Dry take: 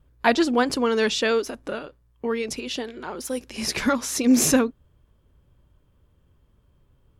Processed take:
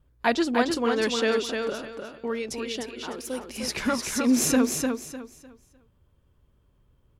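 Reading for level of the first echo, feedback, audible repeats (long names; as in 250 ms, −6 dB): −4.5 dB, 27%, 3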